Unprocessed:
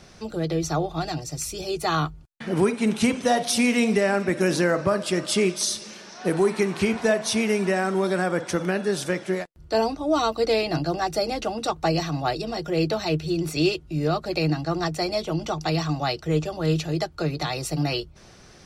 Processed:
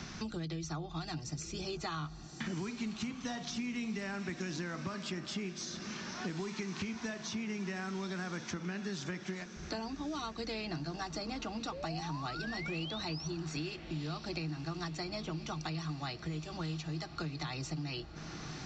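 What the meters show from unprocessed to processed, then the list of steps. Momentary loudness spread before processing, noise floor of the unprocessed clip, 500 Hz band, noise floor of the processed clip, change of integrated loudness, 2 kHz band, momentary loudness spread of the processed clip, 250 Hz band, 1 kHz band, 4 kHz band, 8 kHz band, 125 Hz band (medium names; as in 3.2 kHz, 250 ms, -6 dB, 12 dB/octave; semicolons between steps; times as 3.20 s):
7 LU, -49 dBFS, -20.5 dB, -48 dBFS, -15.0 dB, -13.0 dB, 3 LU, -13.5 dB, -15.5 dB, -11.5 dB, -14.5 dB, -12.0 dB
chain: FFT filter 270 Hz 0 dB, 530 Hz -14 dB, 1 kHz -2 dB; compression 4:1, threshold -35 dBFS, peak gain reduction 15 dB; painted sound rise, 11.72–13.28 s, 500–6000 Hz -42 dBFS; resampled via 16 kHz; on a send: echo that smears into a reverb 1142 ms, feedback 56%, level -15.5 dB; on the sum: three bands compressed up and down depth 70%; trim -3 dB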